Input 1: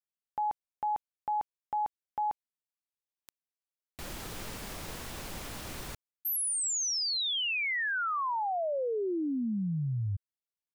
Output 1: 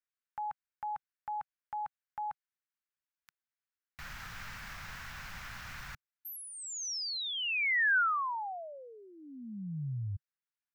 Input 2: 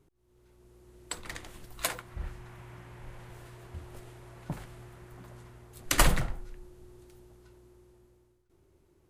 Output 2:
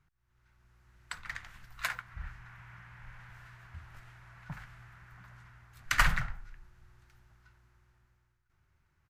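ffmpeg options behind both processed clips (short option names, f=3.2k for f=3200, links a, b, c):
-af "firequalizer=gain_entry='entry(140,0);entry(350,-19);entry(770,-3);entry(1500,10);entry(3300,-1);entry(5700,-1);entry(9400,-11);entry(14000,-5)':delay=0.05:min_phase=1,volume=-4.5dB"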